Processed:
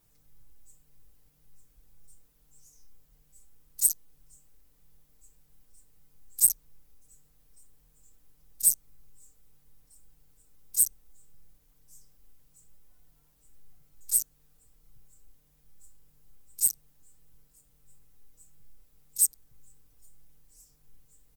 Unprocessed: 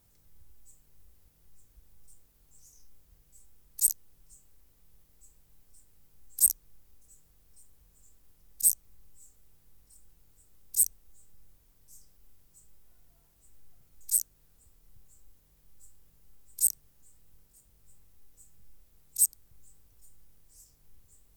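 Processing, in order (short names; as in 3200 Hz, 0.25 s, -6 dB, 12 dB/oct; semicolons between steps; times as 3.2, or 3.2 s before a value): comb 6.7 ms, depth 89%; in parallel at -9 dB: crossover distortion -31.5 dBFS; on the sum: gain -3.5 dB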